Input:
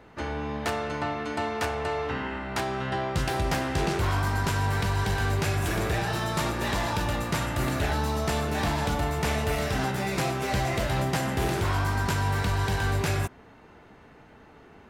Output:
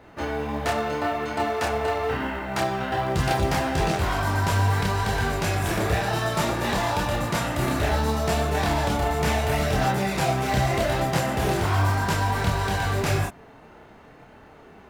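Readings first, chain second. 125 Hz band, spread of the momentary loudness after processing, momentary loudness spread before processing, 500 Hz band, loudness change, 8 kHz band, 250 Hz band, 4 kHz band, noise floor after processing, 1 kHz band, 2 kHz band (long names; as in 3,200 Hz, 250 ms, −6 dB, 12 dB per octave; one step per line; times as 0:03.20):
+2.5 dB, 4 LU, 4 LU, +4.5 dB, +3.5 dB, +2.5 dB, +3.0 dB, +2.5 dB, −49 dBFS, +4.5 dB, +3.0 dB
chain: parametric band 660 Hz +3.5 dB 0.77 octaves
multi-voice chorus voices 2, 0.76 Hz, delay 28 ms, depth 3.7 ms
in parallel at −7.5 dB: floating-point word with a short mantissa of 2 bits
on the sum: level +2.5 dB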